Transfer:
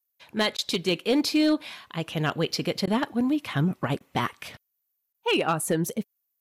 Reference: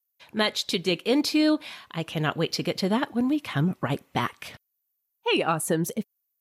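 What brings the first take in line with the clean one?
clip repair -16 dBFS; interpolate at 0.57/2.86/3.99/5.13, 12 ms

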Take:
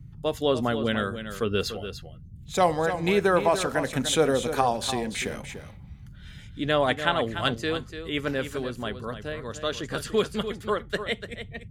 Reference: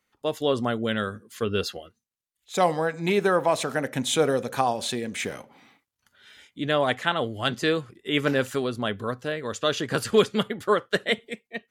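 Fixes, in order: noise print and reduce 27 dB; inverse comb 0.293 s -10 dB; gain correction +5 dB, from 7.56

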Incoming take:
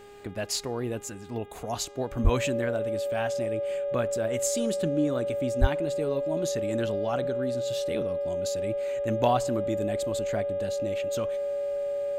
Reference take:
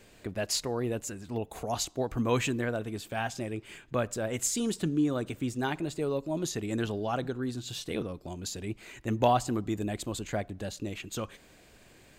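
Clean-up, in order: de-hum 407.9 Hz, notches 9; notch 570 Hz, Q 30; 2.23–2.35 HPF 140 Hz 24 dB/oct; 5.6–5.72 HPF 140 Hz 24 dB/oct

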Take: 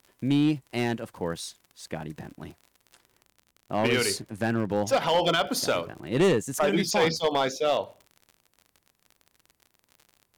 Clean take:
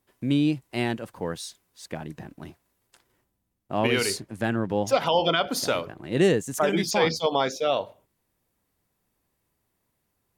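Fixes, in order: clip repair -16.5 dBFS; de-click

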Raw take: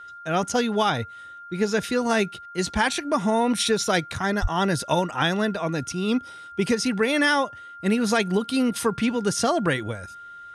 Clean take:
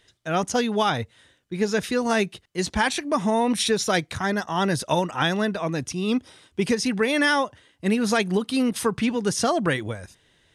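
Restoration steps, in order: notch 1400 Hz, Q 30; de-plosive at 4.41

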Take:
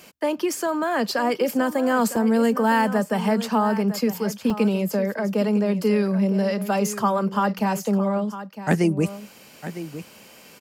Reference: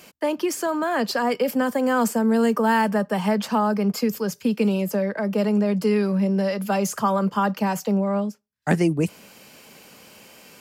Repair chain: interpolate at 2.16/4.5/7.59, 3.8 ms; inverse comb 0.957 s -13 dB

